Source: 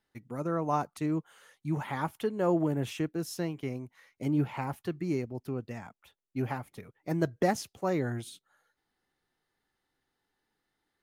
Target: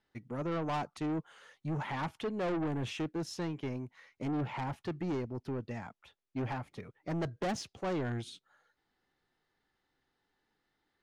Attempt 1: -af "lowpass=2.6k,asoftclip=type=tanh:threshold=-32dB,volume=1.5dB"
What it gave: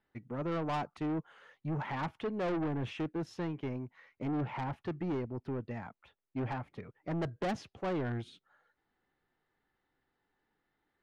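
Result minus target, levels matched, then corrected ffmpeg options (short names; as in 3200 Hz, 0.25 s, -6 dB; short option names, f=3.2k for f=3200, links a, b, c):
4000 Hz band -4.0 dB
-af "lowpass=5.6k,asoftclip=type=tanh:threshold=-32dB,volume=1.5dB"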